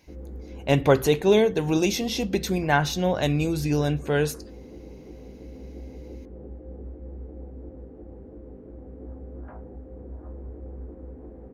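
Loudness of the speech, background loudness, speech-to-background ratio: -23.0 LUFS, -42.0 LUFS, 19.0 dB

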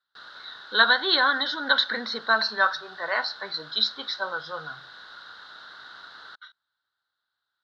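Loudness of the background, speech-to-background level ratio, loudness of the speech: -43.5 LUFS, 20.0 dB, -23.5 LUFS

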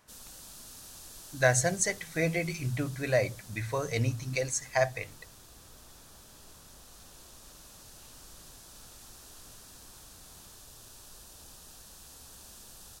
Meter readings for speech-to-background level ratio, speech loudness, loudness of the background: 19.0 dB, -30.0 LUFS, -49.0 LUFS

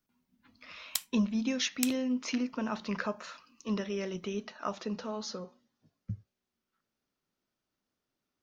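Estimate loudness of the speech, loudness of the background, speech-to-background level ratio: -34.5 LUFS, -37.0 LUFS, 2.5 dB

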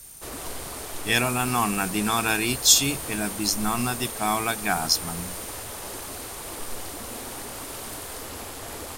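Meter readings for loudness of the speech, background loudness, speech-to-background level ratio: -23.0 LUFS, -35.5 LUFS, 12.5 dB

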